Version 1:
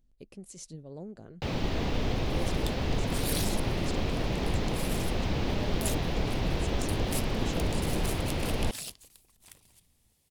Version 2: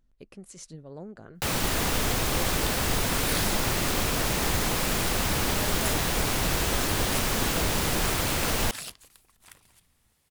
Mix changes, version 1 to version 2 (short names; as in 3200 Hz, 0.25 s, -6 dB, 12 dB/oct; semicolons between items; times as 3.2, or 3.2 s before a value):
first sound: remove air absorption 250 m; master: add bell 1400 Hz +10 dB 1.4 oct